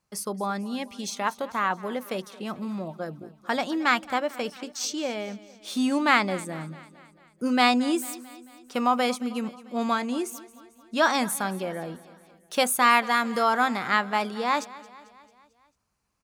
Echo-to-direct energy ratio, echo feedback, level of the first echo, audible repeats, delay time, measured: −17.5 dB, 56%, −19.0 dB, 4, 222 ms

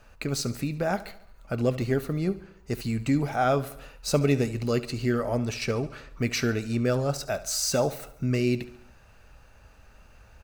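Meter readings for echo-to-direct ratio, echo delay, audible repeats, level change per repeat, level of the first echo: −15.5 dB, 71 ms, 4, −5.0 dB, −17.0 dB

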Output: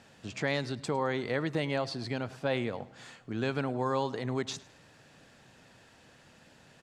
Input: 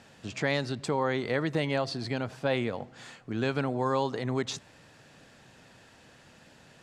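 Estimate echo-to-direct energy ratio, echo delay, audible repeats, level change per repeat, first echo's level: −20.5 dB, 105 ms, 2, −9.0 dB, −21.0 dB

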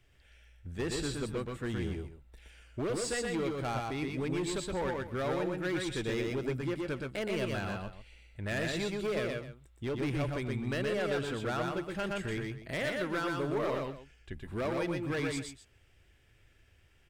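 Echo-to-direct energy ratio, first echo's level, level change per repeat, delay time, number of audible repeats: −2.5 dB, −3.0 dB, repeats not evenly spaced, 120 ms, 2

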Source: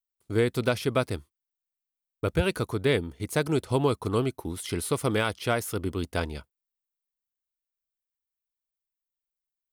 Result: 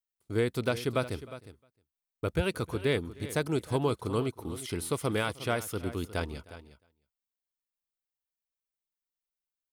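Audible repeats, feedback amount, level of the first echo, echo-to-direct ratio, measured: 2, repeats not evenly spaced, −23.5 dB, −14.0 dB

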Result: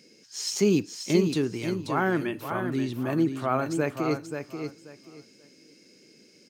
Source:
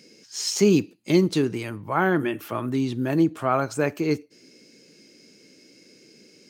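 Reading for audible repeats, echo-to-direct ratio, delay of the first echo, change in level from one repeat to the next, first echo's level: 3, −7.0 dB, 533 ms, −13.5 dB, −7.0 dB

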